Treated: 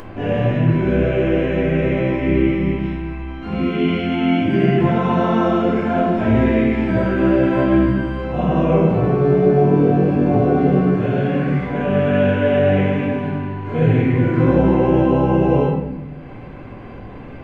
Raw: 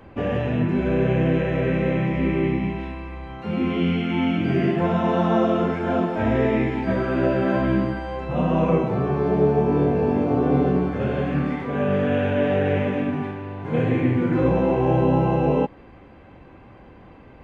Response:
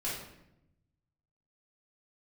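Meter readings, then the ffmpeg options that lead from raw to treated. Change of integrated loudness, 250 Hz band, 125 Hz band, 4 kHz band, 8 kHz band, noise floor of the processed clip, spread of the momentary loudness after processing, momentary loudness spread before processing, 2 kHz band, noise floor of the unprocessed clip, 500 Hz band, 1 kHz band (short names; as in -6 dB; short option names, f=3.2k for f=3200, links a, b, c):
+5.0 dB, +5.0 dB, +5.5 dB, +4.0 dB, n/a, -34 dBFS, 10 LU, 7 LU, +4.0 dB, -46 dBFS, +4.5 dB, +3.5 dB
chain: -filter_complex "[0:a]bandreject=f=220.1:t=h:w=4,bandreject=f=440.2:t=h:w=4,bandreject=f=660.3:t=h:w=4,bandreject=f=880.4:t=h:w=4,bandreject=f=1.1005k:t=h:w=4,bandreject=f=1.3206k:t=h:w=4[a];[1:a]atrim=start_sample=2205[b];[a][b]afir=irnorm=-1:irlink=0,acompressor=mode=upward:threshold=-26dB:ratio=2.5"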